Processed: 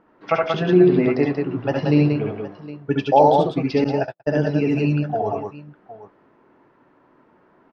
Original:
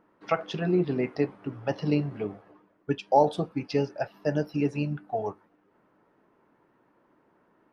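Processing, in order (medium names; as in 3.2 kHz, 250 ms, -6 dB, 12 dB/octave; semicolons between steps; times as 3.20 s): low-pass 4.6 kHz 12 dB/octave; on a send: multi-tap echo 67/75/78/89/183/763 ms -3.5/-5/-10.5/-15/-4/-16 dB; 3.84–4.45 s: on the sum: gate -26 dBFS, range -58 dB; trim +5.5 dB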